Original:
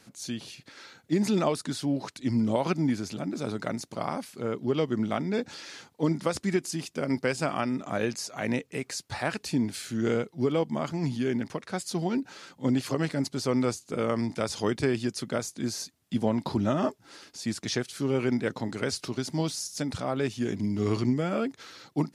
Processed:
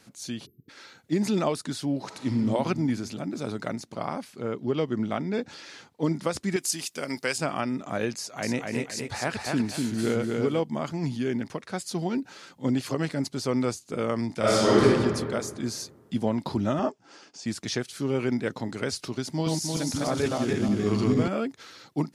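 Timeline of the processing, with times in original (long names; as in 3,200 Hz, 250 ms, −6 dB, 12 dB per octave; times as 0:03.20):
0:00.46–0:00.69: time-frequency box erased 470–12,000 Hz
0:02.01–0:02.42: thrown reverb, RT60 2.1 s, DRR 4 dB
0:03.73–0:06.02: high-shelf EQ 6,500 Hz −6.5 dB
0:06.56–0:07.38: spectral tilt +3 dB per octave
0:08.18–0:10.60: repeating echo 245 ms, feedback 30%, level −3 dB
0:14.39–0:14.83: thrown reverb, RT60 1.9 s, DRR −9.5 dB
0:16.79–0:17.46: loudspeaker in its box 160–7,100 Hz, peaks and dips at 760 Hz +4 dB, 2,000 Hz −4 dB, 3,900 Hz −8 dB
0:19.31–0:21.28: feedback delay that plays each chunk backwards 153 ms, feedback 62%, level −0.5 dB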